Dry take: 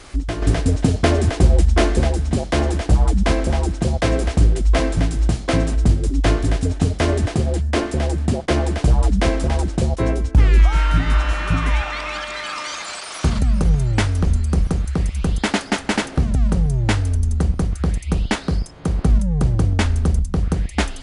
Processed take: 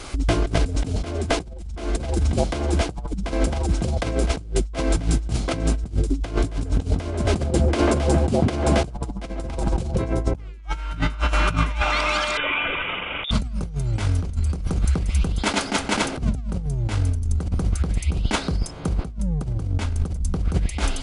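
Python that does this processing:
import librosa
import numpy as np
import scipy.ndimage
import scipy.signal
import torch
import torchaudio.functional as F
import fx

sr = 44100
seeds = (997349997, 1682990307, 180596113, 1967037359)

y = fx.echo_wet_lowpass(x, sr, ms=142, feedback_pct=33, hz=1600.0, wet_db=-5.0, at=(6.46, 10.45), fade=0.02)
y = fx.freq_invert(y, sr, carrier_hz=3600, at=(12.37, 13.31))
y = fx.notch(y, sr, hz=1800.0, q=7.9)
y = fx.over_compress(y, sr, threshold_db=-21.0, ratio=-0.5)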